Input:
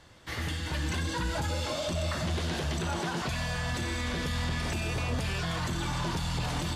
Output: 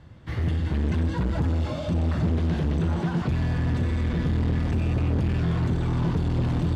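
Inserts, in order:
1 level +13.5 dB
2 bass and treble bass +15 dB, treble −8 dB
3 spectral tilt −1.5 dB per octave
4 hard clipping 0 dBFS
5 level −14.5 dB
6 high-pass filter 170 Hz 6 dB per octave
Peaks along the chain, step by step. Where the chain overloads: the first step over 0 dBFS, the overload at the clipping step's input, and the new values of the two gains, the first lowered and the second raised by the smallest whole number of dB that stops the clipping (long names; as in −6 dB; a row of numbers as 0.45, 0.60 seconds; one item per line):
−8.0, +4.5, +9.5, 0.0, −14.5, −13.0 dBFS
step 2, 9.5 dB
step 1 +3.5 dB, step 5 −4.5 dB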